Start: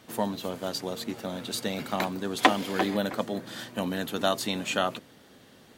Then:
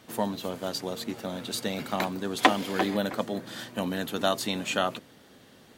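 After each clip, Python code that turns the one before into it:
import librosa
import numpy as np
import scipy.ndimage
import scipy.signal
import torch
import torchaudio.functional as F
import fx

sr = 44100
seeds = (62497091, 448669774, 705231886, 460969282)

y = x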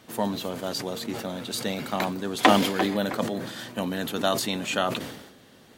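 y = fx.sustainer(x, sr, db_per_s=58.0)
y = y * librosa.db_to_amplitude(1.0)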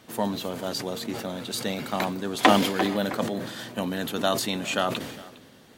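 y = x + 10.0 ** (-21.0 / 20.0) * np.pad(x, (int(408 * sr / 1000.0), 0))[:len(x)]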